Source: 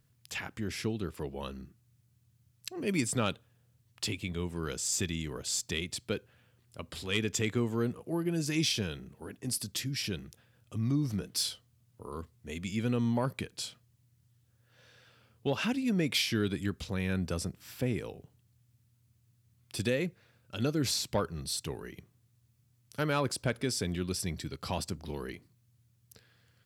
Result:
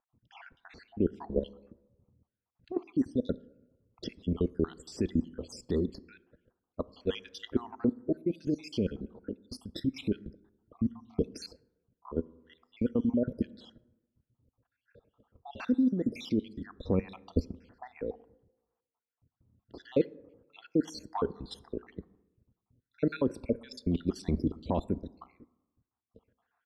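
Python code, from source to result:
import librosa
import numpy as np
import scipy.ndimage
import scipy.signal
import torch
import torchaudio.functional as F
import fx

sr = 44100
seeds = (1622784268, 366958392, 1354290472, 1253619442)

y = fx.spec_dropout(x, sr, seeds[0], share_pct=65)
y = fx.level_steps(y, sr, step_db=13)
y = fx.env_lowpass(y, sr, base_hz=1600.0, full_db=-40.5)
y = fx.graphic_eq(y, sr, hz=(125, 250, 500, 1000, 2000, 4000, 8000), db=(-10, 11, 10, 6, -4, 7, -3))
y = fx.rev_plate(y, sr, seeds[1], rt60_s=1.1, hf_ratio=0.4, predelay_ms=0, drr_db=19.5)
y = fx.rider(y, sr, range_db=3, speed_s=0.5)
y = fx.riaa(y, sr, side='playback')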